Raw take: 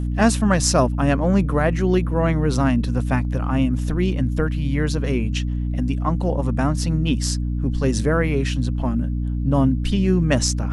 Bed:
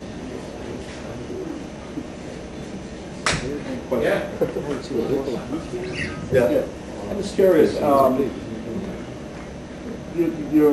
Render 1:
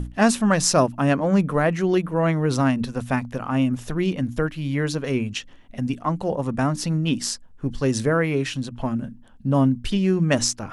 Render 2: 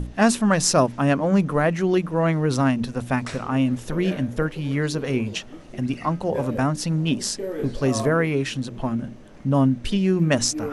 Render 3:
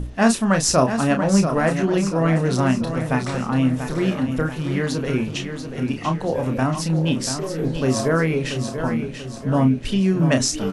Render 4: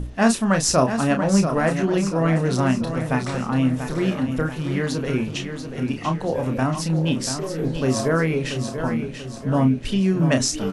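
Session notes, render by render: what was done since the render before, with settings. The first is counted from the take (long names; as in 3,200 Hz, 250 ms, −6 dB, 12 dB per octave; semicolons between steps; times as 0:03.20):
mains-hum notches 60/120/180/240/300 Hz
mix in bed −14.5 dB
double-tracking delay 31 ms −7 dB; repeating echo 687 ms, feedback 47%, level −8.5 dB
level −1 dB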